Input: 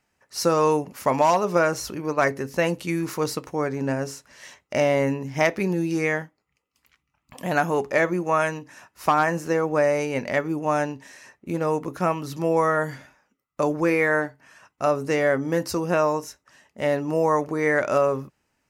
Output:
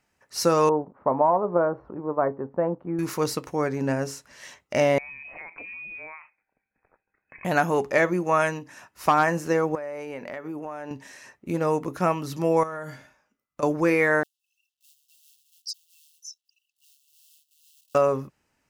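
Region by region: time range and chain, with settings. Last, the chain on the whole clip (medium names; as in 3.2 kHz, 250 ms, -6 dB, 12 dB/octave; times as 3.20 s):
0.69–2.99 s: companding laws mixed up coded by A + low-pass 1.1 kHz 24 dB/octave + bass shelf 140 Hz -9 dB
4.98–7.45 s: high-pass 270 Hz 24 dB/octave + compression, threshold -38 dBFS + frequency inversion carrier 2.8 kHz
9.75–10.91 s: high-pass 400 Hz 6 dB/octave + compression 16:1, threshold -29 dBFS + peaking EQ 6.2 kHz -11 dB 2.2 oct
12.63–13.63 s: band-stop 1.9 kHz, Q 18 + feedback comb 56 Hz, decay 0.45 s, mix 50% + compression, threshold -30 dBFS
14.23–17.95 s: resonances exaggerated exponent 3 + companded quantiser 8-bit + brick-wall FIR high-pass 2.6 kHz
whole clip: none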